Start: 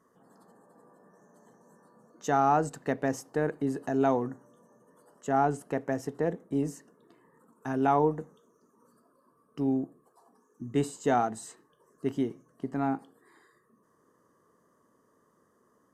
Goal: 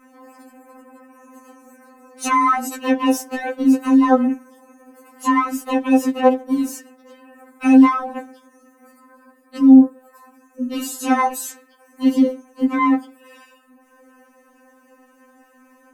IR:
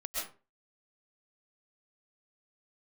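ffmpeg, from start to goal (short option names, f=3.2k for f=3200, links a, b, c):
-filter_complex "[0:a]asplit=2[a][b];[b]asetrate=66075,aresample=44100,atempo=0.66742,volume=-2dB[c];[a][c]amix=inputs=2:normalize=0,alimiter=level_in=19.5dB:limit=-1dB:release=50:level=0:latency=1,afftfilt=real='re*3.46*eq(mod(b,12),0)':imag='im*3.46*eq(mod(b,12),0)':win_size=2048:overlap=0.75,volume=-4dB"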